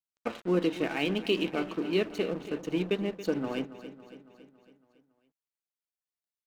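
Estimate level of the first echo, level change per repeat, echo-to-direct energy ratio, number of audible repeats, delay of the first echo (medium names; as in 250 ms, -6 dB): -14.0 dB, -5.0 dB, -12.5 dB, 5, 278 ms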